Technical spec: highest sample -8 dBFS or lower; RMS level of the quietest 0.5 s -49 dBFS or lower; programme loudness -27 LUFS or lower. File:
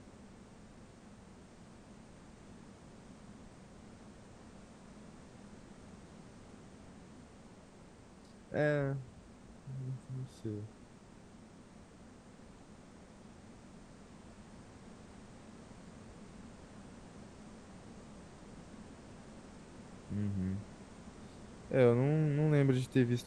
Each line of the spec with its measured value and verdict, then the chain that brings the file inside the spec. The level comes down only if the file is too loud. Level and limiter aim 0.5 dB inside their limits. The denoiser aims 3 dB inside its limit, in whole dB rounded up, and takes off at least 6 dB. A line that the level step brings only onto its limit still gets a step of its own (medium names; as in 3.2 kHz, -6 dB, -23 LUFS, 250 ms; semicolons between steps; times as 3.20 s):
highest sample -15.0 dBFS: pass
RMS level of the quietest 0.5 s -57 dBFS: pass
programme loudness -34.0 LUFS: pass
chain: none needed